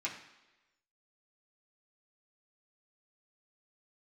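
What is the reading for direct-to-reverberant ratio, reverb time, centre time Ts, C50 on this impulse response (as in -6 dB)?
-5.5 dB, 1.1 s, 26 ms, 8.0 dB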